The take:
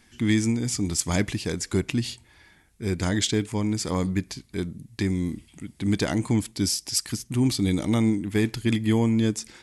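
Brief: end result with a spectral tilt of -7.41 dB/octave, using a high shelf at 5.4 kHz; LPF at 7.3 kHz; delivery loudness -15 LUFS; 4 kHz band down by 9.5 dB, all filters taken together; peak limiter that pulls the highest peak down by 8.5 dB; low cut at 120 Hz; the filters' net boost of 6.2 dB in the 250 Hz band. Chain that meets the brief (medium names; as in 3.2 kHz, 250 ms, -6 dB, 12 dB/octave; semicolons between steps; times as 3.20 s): high-pass 120 Hz; low-pass 7.3 kHz; peaking EQ 250 Hz +8 dB; peaking EQ 4 kHz -9 dB; treble shelf 5.4 kHz -6.5 dB; trim +10.5 dB; peak limiter -5 dBFS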